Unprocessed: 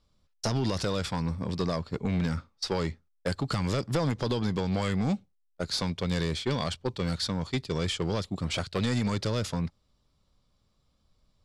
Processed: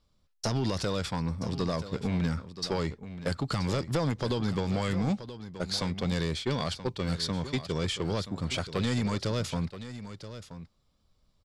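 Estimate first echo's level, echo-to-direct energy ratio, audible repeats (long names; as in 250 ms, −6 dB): −12.5 dB, −12.5 dB, 1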